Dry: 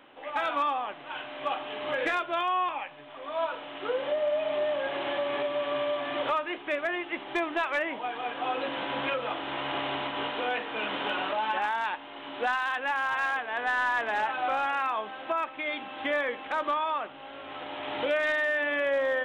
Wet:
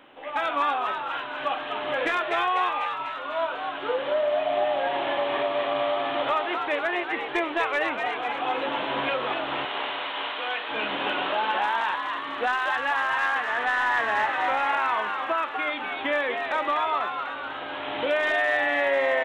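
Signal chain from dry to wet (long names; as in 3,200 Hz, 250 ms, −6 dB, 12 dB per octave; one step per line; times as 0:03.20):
0:09.65–0:10.69: high-pass filter 1,000 Hz 6 dB per octave
echo with shifted repeats 247 ms, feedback 59%, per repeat +110 Hz, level −5.5 dB
level +2.5 dB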